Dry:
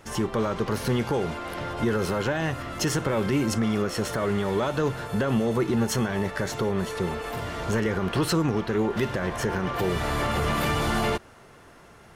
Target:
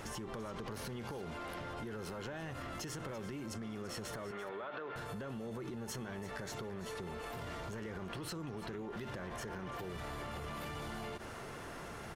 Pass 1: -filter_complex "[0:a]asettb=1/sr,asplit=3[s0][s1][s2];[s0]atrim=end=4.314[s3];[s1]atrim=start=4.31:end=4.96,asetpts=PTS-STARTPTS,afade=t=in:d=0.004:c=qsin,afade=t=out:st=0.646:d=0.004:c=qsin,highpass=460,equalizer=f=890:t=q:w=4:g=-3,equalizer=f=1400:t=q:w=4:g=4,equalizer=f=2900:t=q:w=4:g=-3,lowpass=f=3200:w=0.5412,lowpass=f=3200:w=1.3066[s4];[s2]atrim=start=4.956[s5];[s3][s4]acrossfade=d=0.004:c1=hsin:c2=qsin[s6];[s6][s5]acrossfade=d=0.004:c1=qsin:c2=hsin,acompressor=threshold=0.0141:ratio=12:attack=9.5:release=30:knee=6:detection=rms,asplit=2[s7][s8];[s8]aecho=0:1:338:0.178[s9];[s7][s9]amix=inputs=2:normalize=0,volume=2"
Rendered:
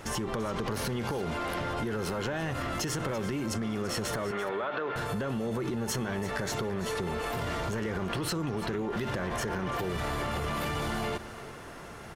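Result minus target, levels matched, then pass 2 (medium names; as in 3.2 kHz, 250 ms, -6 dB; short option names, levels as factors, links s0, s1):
compression: peak gain reduction -11 dB
-filter_complex "[0:a]asettb=1/sr,asplit=3[s0][s1][s2];[s0]atrim=end=4.314[s3];[s1]atrim=start=4.31:end=4.96,asetpts=PTS-STARTPTS,afade=t=in:d=0.004:c=qsin,afade=t=out:st=0.646:d=0.004:c=qsin,highpass=460,equalizer=f=890:t=q:w=4:g=-3,equalizer=f=1400:t=q:w=4:g=4,equalizer=f=2900:t=q:w=4:g=-3,lowpass=f=3200:w=0.5412,lowpass=f=3200:w=1.3066[s4];[s2]atrim=start=4.956[s5];[s3][s4]acrossfade=d=0.004:c1=hsin:c2=qsin[s6];[s6][s5]acrossfade=d=0.004:c1=qsin:c2=hsin,acompressor=threshold=0.00355:ratio=12:attack=9.5:release=30:knee=6:detection=rms,asplit=2[s7][s8];[s8]aecho=0:1:338:0.178[s9];[s7][s9]amix=inputs=2:normalize=0,volume=2"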